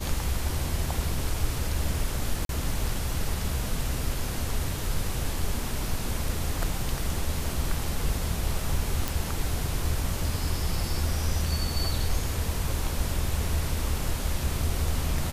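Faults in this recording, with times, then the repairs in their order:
2.45–2.49 gap 42 ms
9.08 pop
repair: de-click; interpolate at 2.45, 42 ms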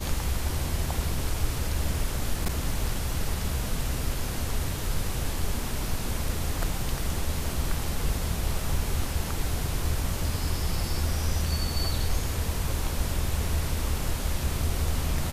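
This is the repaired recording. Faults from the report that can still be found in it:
none

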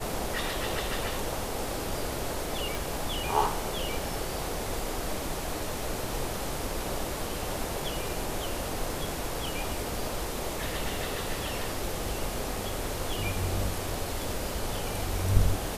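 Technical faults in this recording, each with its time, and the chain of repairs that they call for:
2.75 pop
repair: de-click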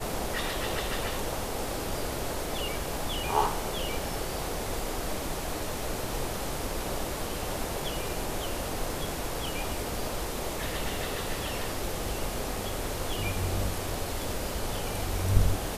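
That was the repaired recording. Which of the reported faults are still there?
none

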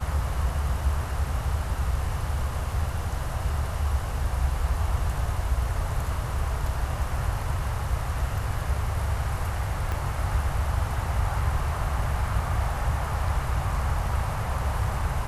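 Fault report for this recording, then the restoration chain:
9.92 pop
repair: de-click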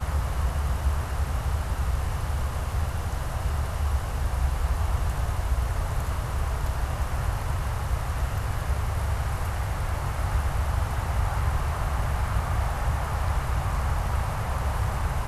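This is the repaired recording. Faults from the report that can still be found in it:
9.92 pop

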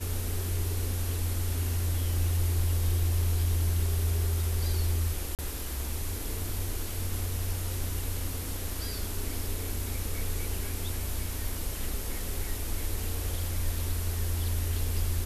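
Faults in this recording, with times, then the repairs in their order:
5.35–5.39 gap 38 ms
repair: interpolate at 5.35, 38 ms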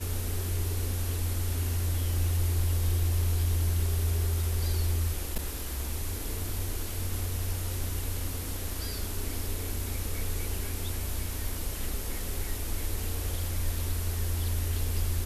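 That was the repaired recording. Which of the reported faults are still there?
none

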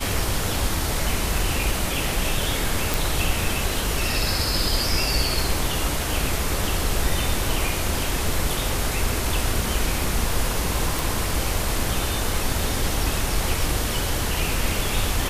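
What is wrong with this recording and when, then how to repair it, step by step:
2.94 pop
10.99 pop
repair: de-click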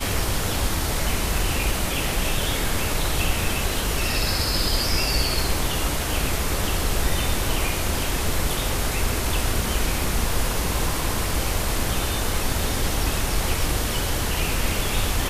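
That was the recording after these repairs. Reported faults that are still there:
none

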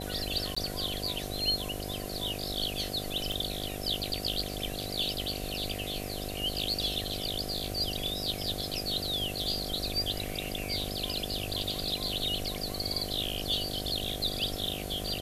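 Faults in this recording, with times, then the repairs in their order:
buzz 50 Hz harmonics 15 -39 dBFS
0.55–0.56 gap 15 ms
3.32 pop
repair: de-click; de-hum 50 Hz, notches 15; interpolate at 0.55, 15 ms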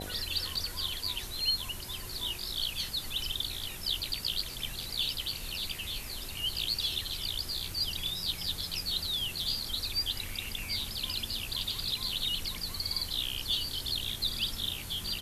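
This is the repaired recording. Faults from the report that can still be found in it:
none

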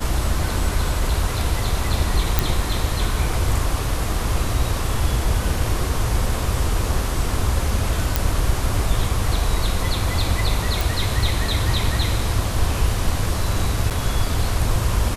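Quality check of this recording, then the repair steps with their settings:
2.39 pop
8.16 pop
10.81 pop
13.9–13.91 gap 8.1 ms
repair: de-click; interpolate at 13.9, 8.1 ms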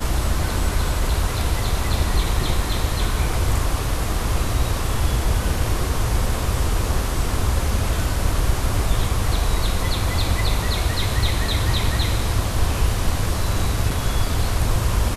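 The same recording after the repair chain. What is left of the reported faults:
none

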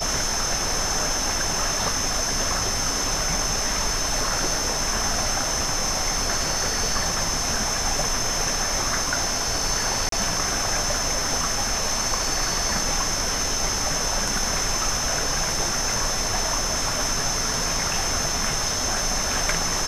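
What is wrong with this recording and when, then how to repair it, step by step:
tone 5300 Hz -29 dBFS
10.09–10.12 gap 33 ms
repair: notch 5300 Hz, Q 30; interpolate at 10.09, 33 ms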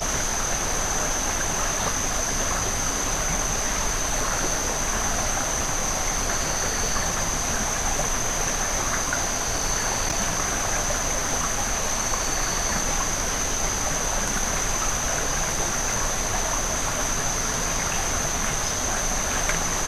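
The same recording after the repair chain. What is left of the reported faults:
none

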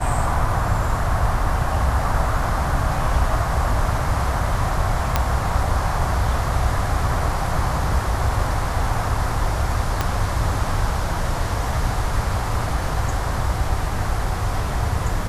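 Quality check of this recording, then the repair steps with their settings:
5.16 pop -3 dBFS
10.01 pop -6 dBFS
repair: de-click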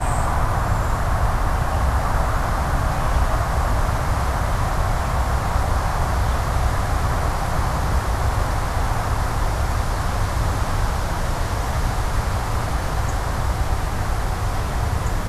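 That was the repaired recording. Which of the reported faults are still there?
10.01 pop

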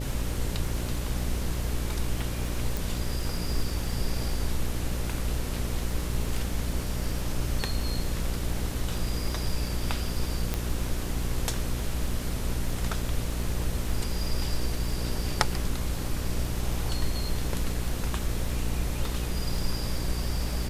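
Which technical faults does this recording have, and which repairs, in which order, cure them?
buzz 60 Hz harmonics 10 -32 dBFS
crackle 25/s -34 dBFS
2.77 pop
10.54 pop -12 dBFS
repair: de-click; de-hum 60 Hz, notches 10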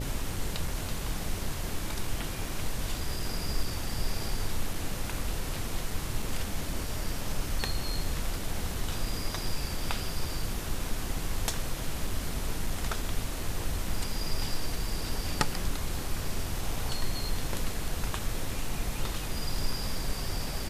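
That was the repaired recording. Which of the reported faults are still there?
none

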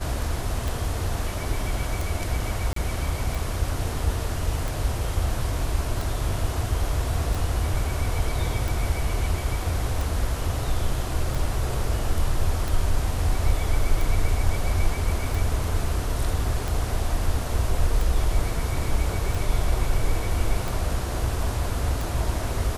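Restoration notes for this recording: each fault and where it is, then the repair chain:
tick 45 rpm
2.73–2.76 gap 33 ms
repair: de-click; interpolate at 2.73, 33 ms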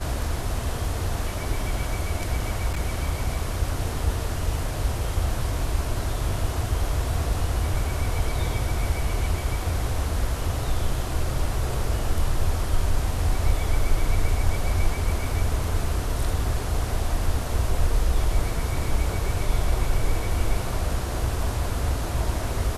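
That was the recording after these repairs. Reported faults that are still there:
none

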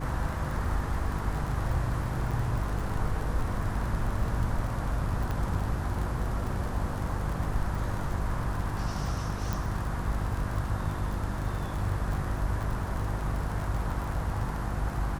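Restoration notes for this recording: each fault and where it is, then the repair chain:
crackle 44/s -33 dBFS
hum 50 Hz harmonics 7 -34 dBFS
2.31–2.32 gap 6.2 ms
5.31 pop -20 dBFS
9.53 pop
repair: de-click; de-hum 50 Hz, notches 7; interpolate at 2.31, 6.2 ms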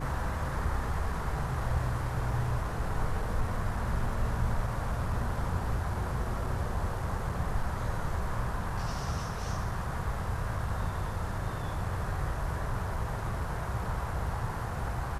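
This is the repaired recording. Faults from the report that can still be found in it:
5.31 pop

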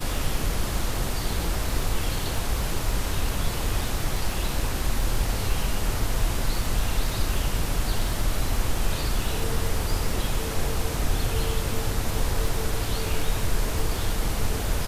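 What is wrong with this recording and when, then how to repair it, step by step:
crackle 28/s -29 dBFS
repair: de-click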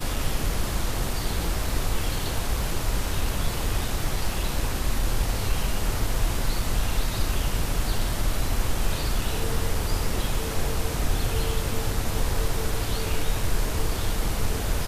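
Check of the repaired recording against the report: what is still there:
none

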